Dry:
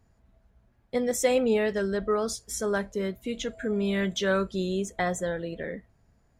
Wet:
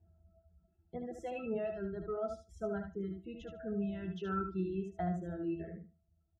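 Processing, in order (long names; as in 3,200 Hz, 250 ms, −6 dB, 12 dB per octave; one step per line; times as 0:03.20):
reverb reduction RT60 1.6 s
gate on every frequency bin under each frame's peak −30 dB strong
resonances in every octave E, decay 0.16 s
on a send: repeating echo 74 ms, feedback 15%, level −6 dB
on the sum: level +6 dB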